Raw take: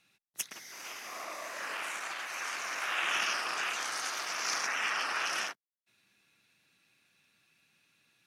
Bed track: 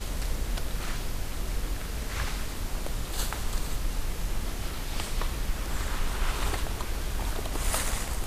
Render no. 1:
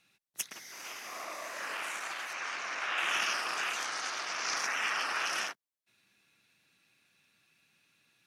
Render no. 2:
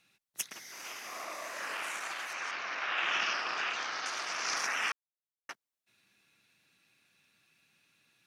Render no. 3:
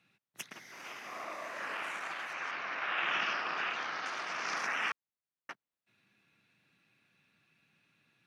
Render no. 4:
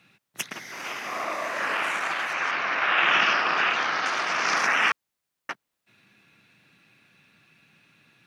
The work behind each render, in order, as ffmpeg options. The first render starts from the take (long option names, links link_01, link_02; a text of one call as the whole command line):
ffmpeg -i in.wav -filter_complex "[0:a]asettb=1/sr,asplit=3[link_01][link_02][link_03];[link_01]atrim=end=2.334[link_04];[link_02]atrim=start=2.33:end=2.98,asetpts=PTS-STARTPTS,afade=type=in:duration=0.004:curve=qsin,afade=type=out:start_time=0.646:duration=0.004:curve=qsin,lowpass=5300[link_05];[link_03]atrim=start=2.976[link_06];[link_04][link_05]acrossfade=duration=0.004:curve1=hsin:curve2=qsin[link_07];[link_07][link_06]acrossfade=duration=0.004:curve1=qsin:curve2=hsin,asettb=1/sr,asplit=3[link_08][link_09][link_10];[link_08]atrim=end=3.854[link_11];[link_09]atrim=start=3.85:end=4.57,asetpts=PTS-STARTPTS,afade=type=in:duration=0.004:curve=qsin,afade=type=out:start_time=0.716:duration=0.004:curve=qsin,lowpass=6800[link_12];[link_10]atrim=start=4.566[link_13];[link_11][link_12]acrossfade=duration=0.004:curve1=hsin:curve2=qsin[link_14];[link_14][link_13]acrossfade=duration=0.004:curve1=qsin:curve2=hsin" out.wav
ffmpeg -i in.wav -filter_complex "[0:a]asettb=1/sr,asplit=3[link_01][link_02][link_03];[link_01]atrim=end=2.514[link_04];[link_02]atrim=start=2.51:end=4.06,asetpts=PTS-STARTPTS,afade=type=in:duration=0.004:curve=qsin,afade=type=out:start_time=1.546:duration=0.004:curve=qsin,lowpass=frequency=5300:width=0.5412,lowpass=frequency=5300:width=1.3066[link_05];[link_03]atrim=start=4.056[link_06];[link_04][link_05]acrossfade=duration=0.004:curve1=hsin:curve2=qsin[link_07];[link_07][link_06]acrossfade=duration=0.004:curve1=qsin:curve2=hsin,asplit=3[link_08][link_09][link_10];[link_08]atrim=end=4.92,asetpts=PTS-STARTPTS,afade=type=out:start_time=4.916:duration=0.004:curve=hsin[link_11];[link_09]atrim=start=4.92:end=5.49,asetpts=PTS-STARTPTS,volume=0[link_12];[link_10]atrim=start=5.49,asetpts=PTS-STARTPTS,afade=type=in:duration=0.004:curve=hsin[link_13];[link_11][link_12][link_13]concat=n=3:v=0:a=1" out.wav
ffmpeg -i in.wav -af "highpass=95,bass=frequency=250:gain=6,treble=frequency=4000:gain=-12" out.wav
ffmpeg -i in.wav -af "volume=12dB" out.wav